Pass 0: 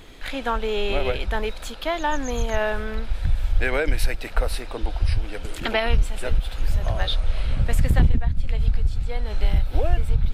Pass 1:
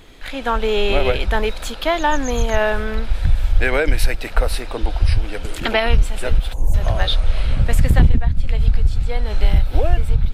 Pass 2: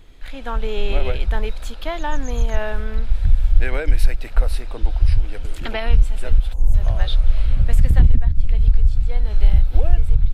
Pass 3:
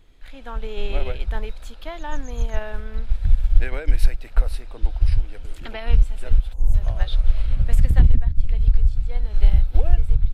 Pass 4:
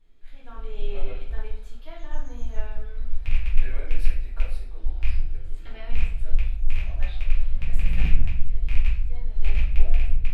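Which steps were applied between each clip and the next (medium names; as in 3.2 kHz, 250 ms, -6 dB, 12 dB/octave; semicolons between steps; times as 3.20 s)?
time-frequency box 6.53–6.74 s, 1.1–5.8 kHz -23 dB; level rider gain up to 7.5 dB
bass shelf 97 Hz +12 dB; trim -9 dB
upward expansion 1.5:1, over -20 dBFS
rattle on loud lows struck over -12 dBFS, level -10 dBFS; simulated room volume 99 m³, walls mixed, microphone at 1.7 m; trim -17.5 dB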